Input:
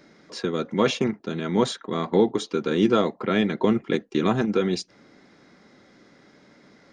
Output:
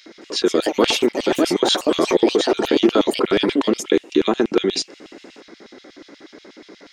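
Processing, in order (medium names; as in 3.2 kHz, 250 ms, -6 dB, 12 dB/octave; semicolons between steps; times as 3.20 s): ever faster or slower copies 218 ms, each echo +5 st, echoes 3, each echo -6 dB; in parallel at +1 dB: compressor with a negative ratio -29 dBFS, ratio -1; on the sum: LFO high-pass square 8.3 Hz 330–3100 Hz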